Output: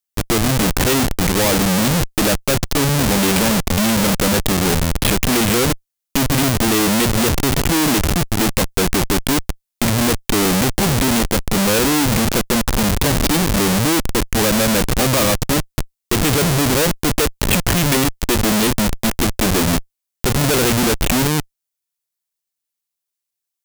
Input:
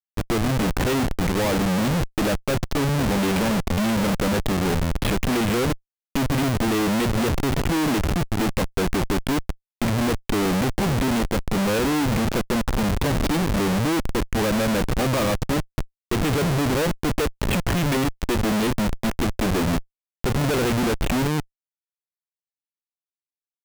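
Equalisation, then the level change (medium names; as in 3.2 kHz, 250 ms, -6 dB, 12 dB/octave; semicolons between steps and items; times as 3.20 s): treble shelf 3.8 kHz +11 dB; +4.5 dB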